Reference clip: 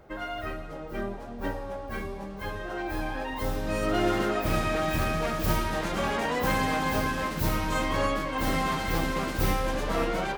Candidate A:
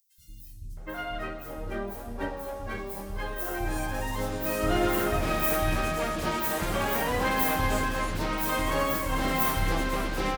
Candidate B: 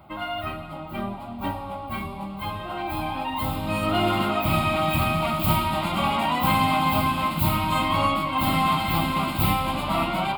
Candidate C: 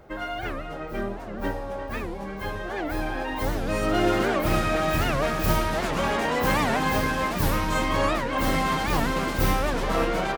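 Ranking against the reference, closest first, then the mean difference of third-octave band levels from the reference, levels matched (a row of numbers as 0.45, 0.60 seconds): C, B, A; 1.5, 3.5, 6.5 decibels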